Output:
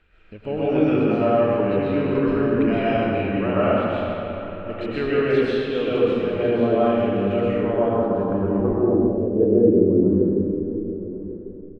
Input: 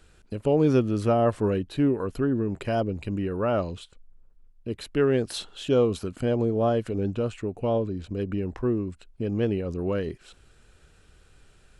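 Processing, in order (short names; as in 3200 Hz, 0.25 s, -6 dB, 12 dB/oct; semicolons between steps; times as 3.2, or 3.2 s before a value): bell 120 Hz -10 dB 0.21 oct; digital reverb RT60 2.8 s, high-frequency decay 0.7×, pre-delay 85 ms, DRR -10 dB; AGC gain up to 4.5 dB; echo 1.097 s -15 dB; low-pass sweep 2400 Hz -> 330 Hz, 7.42–10.02; gain -6.5 dB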